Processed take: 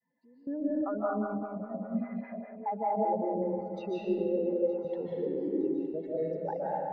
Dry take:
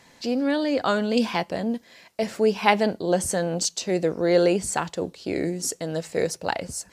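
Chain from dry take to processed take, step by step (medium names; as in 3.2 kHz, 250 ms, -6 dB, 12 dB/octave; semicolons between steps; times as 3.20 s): spectral contrast enhancement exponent 3; high-pass 160 Hz 24 dB/octave; expander -52 dBFS; low-pass 2.1 kHz 24 dB/octave; compression 2:1, threshold -42 dBFS, peak gain reduction 14.5 dB; trance gate "......xxx..xxx" 192 bpm -24 dB; thinning echo 914 ms, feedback 57%, high-pass 830 Hz, level -17 dB; reverberation RT60 2.4 s, pre-delay 110 ms, DRR -7.5 dB; 0.81–3.42 s: lamp-driven phase shifter 5 Hz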